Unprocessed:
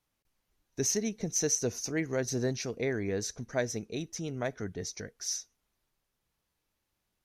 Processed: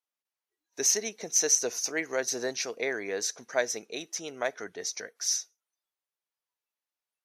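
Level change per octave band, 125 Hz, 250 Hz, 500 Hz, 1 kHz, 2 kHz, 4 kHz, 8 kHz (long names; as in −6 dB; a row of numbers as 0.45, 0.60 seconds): −18.5, −6.5, +1.0, +5.0, +6.0, +6.0, +6.0 decibels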